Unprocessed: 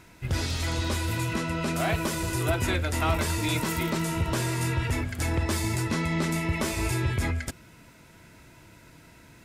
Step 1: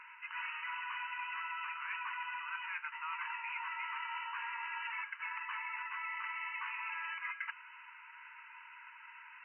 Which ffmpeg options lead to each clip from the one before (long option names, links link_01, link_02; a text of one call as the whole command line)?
ffmpeg -i in.wav -af "afftfilt=real='re*between(b*sr/4096,880,3000)':imag='im*between(b*sr/4096,880,3000)':win_size=4096:overlap=0.75,areverse,acompressor=threshold=-42dB:ratio=16,areverse,volume=4.5dB" out.wav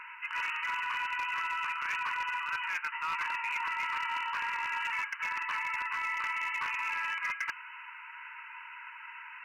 ffmpeg -i in.wav -af "asoftclip=type=hard:threshold=-35dB,volume=7.5dB" out.wav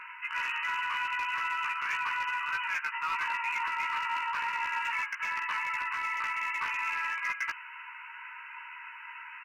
ffmpeg -i in.wav -filter_complex "[0:a]asplit=2[link_01][link_02];[link_02]adelay=15,volume=-4dB[link_03];[link_01][link_03]amix=inputs=2:normalize=0" out.wav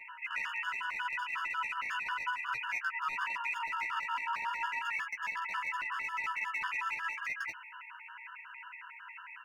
ffmpeg -i in.wav -af "flanger=delay=7.4:depth=3.9:regen=21:speed=0.83:shape=triangular,afftfilt=real='re*gt(sin(2*PI*5.5*pts/sr)*(1-2*mod(floor(b*sr/1024/910),2)),0)':imag='im*gt(sin(2*PI*5.5*pts/sr)*(1-2*mod(floor(b*sr/1024/910),2)),0)':win_size=1024:overlap=0.75,volume=3dB" out.wav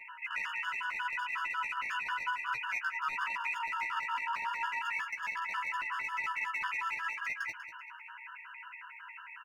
ffmpeg -i in.wav -af "aecho=1:1:193|386|579:0.266|0.0639|0.0153" out.wav